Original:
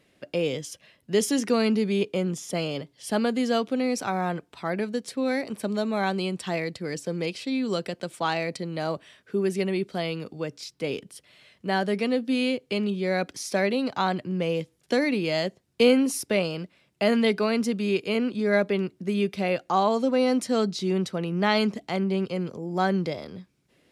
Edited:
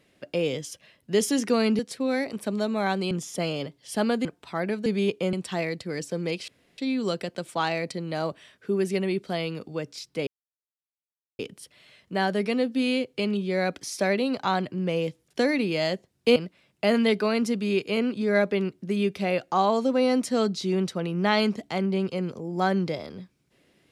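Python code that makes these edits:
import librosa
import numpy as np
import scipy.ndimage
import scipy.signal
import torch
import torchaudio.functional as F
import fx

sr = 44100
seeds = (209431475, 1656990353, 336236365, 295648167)

y = fx.edit(x, sr, fx.swap(start_s=1.79, length_s=0.47, other_s=4.96, other_length_s=1.32),
    fx.cut(start_s=3.4, length_s=0.95),
    fx.insert_room_tone(at_s=7.43, length_s=0.3),
    fx.insert_silence(at_s=10.92, length_s=1.12),
    fx.cut(start_s=15.89, length_s=0.65), tone=tone)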